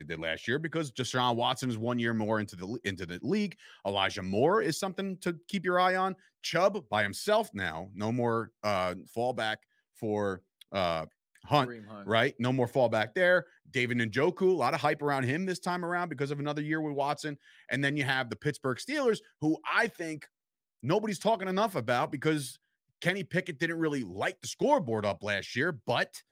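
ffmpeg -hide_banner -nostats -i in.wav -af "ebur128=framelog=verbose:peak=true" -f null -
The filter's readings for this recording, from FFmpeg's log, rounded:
Integrated loudness:
  I:         -30.7 LUFS
  Threshold: -40.8 LUFS
Loudness range:
  LRA:         3.7 LU
  Threshold: -50.9 LUFS
  LRA low:   -32.2 LUFS
  LRA high:  -28.6 LUFS
True peak:
  Peak:       -9.7 dBFS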